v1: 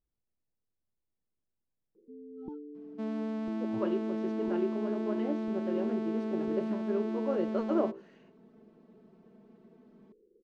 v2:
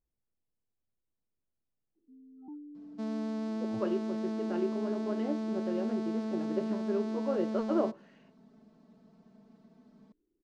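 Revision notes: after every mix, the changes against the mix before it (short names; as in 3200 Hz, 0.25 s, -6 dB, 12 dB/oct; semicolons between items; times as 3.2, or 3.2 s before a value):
first sound: add double band-pass 470 Hz, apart 1.4 oct; second sound: add resonant high shelf 3600 Hz +6.5 dB, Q 1.5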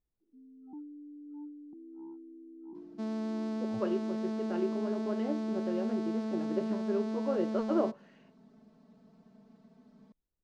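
first sound: entry -1.75 s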